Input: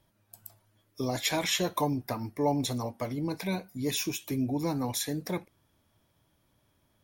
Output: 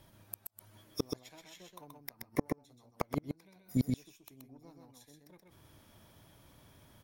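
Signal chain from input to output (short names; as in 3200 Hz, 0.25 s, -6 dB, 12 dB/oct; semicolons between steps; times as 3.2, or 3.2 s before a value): 1.92–3.56 compressor 12:1, threshold -30 dBFS, peak gain reduction 9.5 dB; added harmonics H 3 -18 dB, 4 -28 dB, 6 -27 dB, 7 -35 dB, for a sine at -15.5 dBFS; flipped gate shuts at -31 dBFS, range -38 dB; echo 0.128 s -4 dB; gain +14.5 dB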